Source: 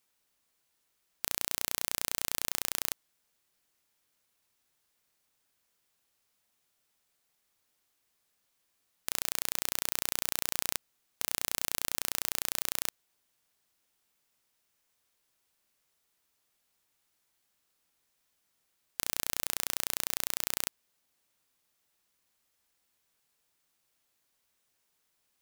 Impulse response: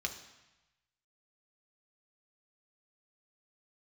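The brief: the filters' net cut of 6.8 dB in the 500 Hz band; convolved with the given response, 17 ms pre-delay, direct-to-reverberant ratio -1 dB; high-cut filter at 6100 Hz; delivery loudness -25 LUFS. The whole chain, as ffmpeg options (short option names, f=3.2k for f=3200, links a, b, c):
-filter_complex "[0:a]lowpass=6.1k,equalizer=f=500:t=o:g=-9,asplit=2[a][b];[1:a]atrim=start_sample=2205,adelay=17[c];[b][c]afir=irnorm=-1:irlink=0,volume=-1dB[d];[a][d]amix=inputs=2:normalize=0,volume=10dB"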